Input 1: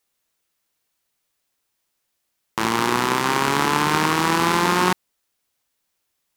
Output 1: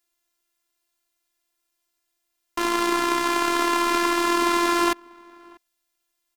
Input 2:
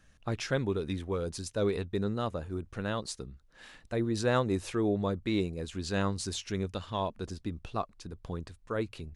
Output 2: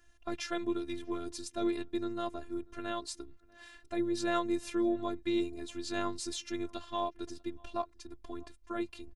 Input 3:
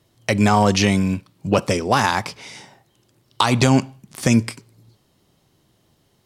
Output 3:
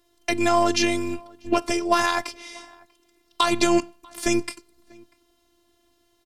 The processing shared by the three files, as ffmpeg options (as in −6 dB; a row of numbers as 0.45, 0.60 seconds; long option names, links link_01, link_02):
-filter_complex "[0:a]asplit=2[link_01][link_02];[link_02]adelay=641.4,volume=-26dB,highshelf=frequency=4000:gain=-14.4[link_03];[link_01][link_03]amix=inputs=2:normalize=0,afftfilt=real='hypot(re,im)*cos(PI*b)':imag='0':win_size=512:overlap=0.75,volume=1dB"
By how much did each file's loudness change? −2.0, −3.0, −4.0 LU